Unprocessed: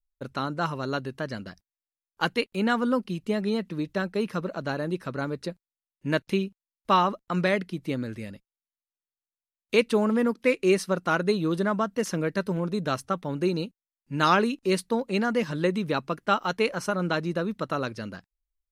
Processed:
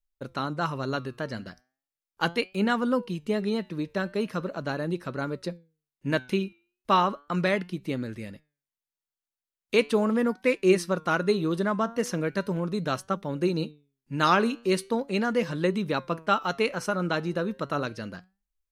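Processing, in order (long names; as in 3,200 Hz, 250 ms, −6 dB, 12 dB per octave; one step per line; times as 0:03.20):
flanger 0.38 Hz, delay 4.9 ms, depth 4 ms, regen +89%
level +4 dB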